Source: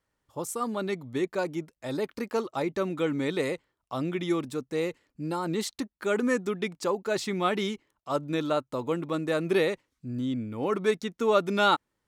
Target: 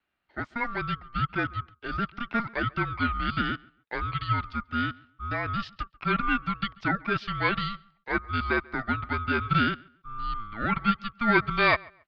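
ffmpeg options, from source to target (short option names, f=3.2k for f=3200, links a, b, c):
-filter_complex "[0:a]highpass=f=240:t=q:w=0.5412,highpass=f=240:t=q:w=1.307,lowpass=f=3.5k:t=q:w=0.5176,lowpass=f=3.5k:t=q:w=0.7071,lowpass=f=3.5k:t=q:w=1.932,afreqshift=360,asplit=2[a][b];[b]adelay=138,lowpass=f=2.6k:p=1,volume=-24dB,asplit=2[c][d];[d]adelay=138,lowpass=f=2.6k:p=1,volume=0.25[e];[a][c][e]amix=inputs=3:normalize=0,aeval=exprs='val(0)*sin(2*PI*590*n/s)':c=same,volume=4dB"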